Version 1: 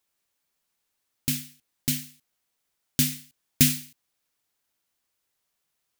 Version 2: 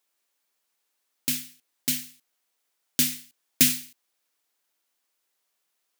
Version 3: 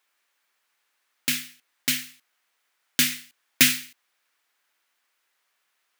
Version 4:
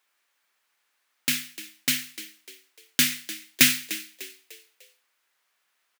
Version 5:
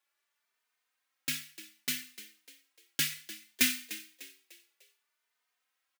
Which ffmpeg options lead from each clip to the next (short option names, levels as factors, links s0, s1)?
-af "highpass=290,volume=1.19"
-af "equalizer=f=1700:t=o:w=2.3:g=12,volume=0.891"
-filter_complex "[0:a]asplit=5[s0][s1][s2][s3][s4];[s1]adelay=299,afreqshift=64,volume=0.178[s5];[s2]adelay=598,afreqshift=128,volume=0.075[s6];[s3]adelay=897,afreqshift=192,volume=0.0313[s7];[s4]adelay=1196,afreqshift=256,volume=0.0132[s8];[s0][s5][s6][s7][s8]amix=inputs=5:normalize=0"
-filter_complex "[0:a]asplit=2[s0][s1];[s1]adelay=3.1,afreqshift=0.64[s2];[s0][s2]amix=inputs=2:normalize=1,volume=0.501"